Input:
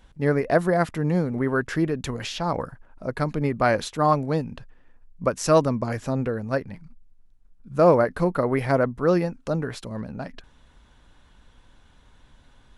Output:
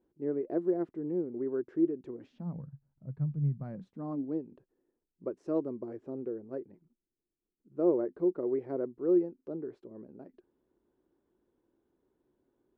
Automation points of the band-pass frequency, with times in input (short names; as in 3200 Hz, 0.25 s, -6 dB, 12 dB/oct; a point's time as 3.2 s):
band-pass, Q 6.8
2.14 s 350 Hz
2.66 s 140 Hz
3.56 s 140 Hz
4.4 s 360 Hz